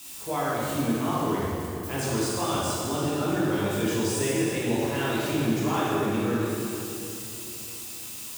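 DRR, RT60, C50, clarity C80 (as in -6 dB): -8.5 dB, 2.9 s, -3.5 dB, -1.5 dB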